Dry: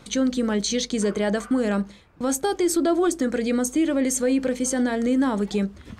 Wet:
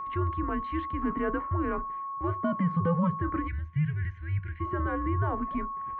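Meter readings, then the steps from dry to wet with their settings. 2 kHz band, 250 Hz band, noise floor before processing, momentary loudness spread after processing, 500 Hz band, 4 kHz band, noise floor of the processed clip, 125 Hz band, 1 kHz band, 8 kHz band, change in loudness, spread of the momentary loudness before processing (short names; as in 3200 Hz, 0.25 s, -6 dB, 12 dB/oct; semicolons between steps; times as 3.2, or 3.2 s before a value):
-6.5 dB, -10.0 dB, -49 dBFS, 6 LU, -11.5 dB, under -20 dB, -39 dBFS, n/a, +1.5 dB, under -40 dB, -7.0 dB, 4 LU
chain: mistuned SSB -170 Hz 260–2400 Hz; whine 1100 Hz -28 dBFS; spectral gain 3.48–4.6, 210–1400 Hz -24 dB; gain -5 dB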